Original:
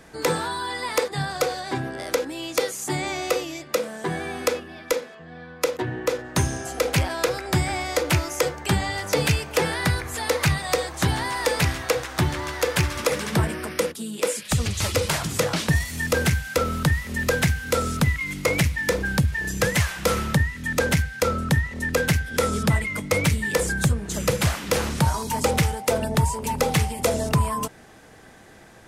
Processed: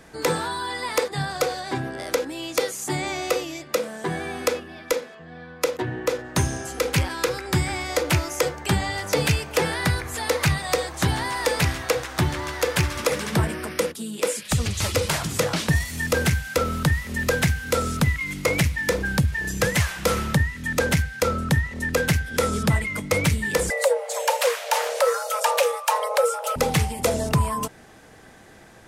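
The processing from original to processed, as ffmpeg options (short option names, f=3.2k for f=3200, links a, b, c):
-filter_complex "[0:a]asettb=1/sr,asplit=3[a][b][c];[a]atrim=end=6.664[d];[b]atrim=start=6.66:end=7.9,asetpts=PTS-STARTPTS,afade=t=in:d=0.004:c=qsin,afade=t=out:st=1.236:d=0.004:c=qsin,equalizer=f=670:w=7.1:g=-14[e];[c]atrim=start=7.896[f];[d][e]acrossfade=d=0.004:c1=hsin:c2=qsin[g];[g][f]acrossfade=d=0.004:c1=qsin:c2=hsin,asettb=1/sr,asplit=3[h][i][j];[h]atrim=end=23.704[k];[i]atrim=start=23.7:end=26.56,asetpts=PTS-STARTPTS,afade=t=in:d=0.004:c=qsin,afade=t=out:st=2.856:d=0.004:c=qsin,afreqshift=400[l];[j]atrim=start=26.556[m];[k][l]acrossfade=d=0.004:c1=hsin:c2=qsin[n];[n][m]acrossfade=d=0.004:c1=qsin:c2=hsin"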